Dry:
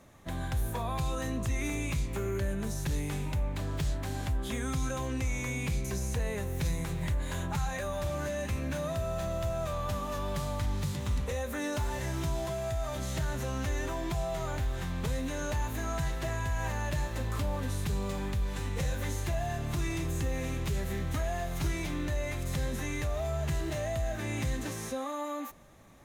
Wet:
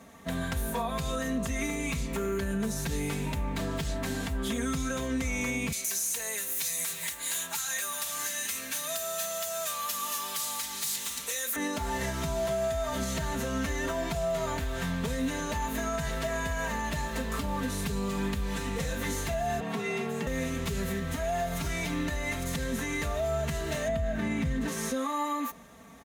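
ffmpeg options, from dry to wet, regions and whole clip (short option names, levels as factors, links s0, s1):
-filter_complex "[0:a]asettb=1/sr,asplit=3[s0][s1][s2];[s0]atrim=end=5.724[s3];[s1]atrim=start=5.72:end=11.56,asetpts=PTS-STARTPTS,afade=t=in:d=0.004:c=qsin,afade=t=out:st=5.836:d=0.004:c=qsin,aderivative,aeval=exprs='0.0447*sin(PI/2*2.24*val(0)/0.0447)':c=same[s4];[s2]atrim=start=11.556[s5];[s3][s4]acrossfade=d=0.004:c1=hsin:c2=qsin[s6];[s6][s5]acrossfade=d=0.004:c1=qsin:c2=hsin,asettb=1/sr,asplit=3[s7][s8][s9];[s7]atrim=end=19.604[s10];[s8]atrim=start=19.6:end=20.27,asetpts=PTS-STARTPTS,afade=t=in:d=0.004:c=qsin,afade=t=out:st=0.666:d=0.004:c=qsin,bass=f=250:g=-10,treble=f=4000:g=-12,afreqshift=63[s11];[s9]atrim=start=20.266[s12];[s10][s11]acrossfade=d=0.004:c1=hsin:c2=qsin[s13];[s13][s12]acrossfade=d=0.004:c1=qsin:c2=hsin,asettb=1/sr,asplit=3[s14][s15][s16];[s14]atrim=end=23.884[s17];[s15]atrim=start=23.88:end=24.68,asetpts=PTS-STARTPTS,afade=t=in:d=0.004:c=qsin,afade=t=out:st=0.796:d=0.004:c=qsin,highpass=49,bass=f=250:g=10,treble=f=4000:g=-9[s18];[s16]atrim=start=24.676[s19];[s17][s18]acrossfade=d=0.004:c1=hsin:c2=qsin[s20];[s20][s19]acrossfade=d=0.004:c1=qsin:c2=hsin,highpass=76,aecho=1:1:4.4:0.87,alimiter=level_in=1.26:limit=0.0631:level=0:latency=1:release=132,volume=0.794,volume=1.58"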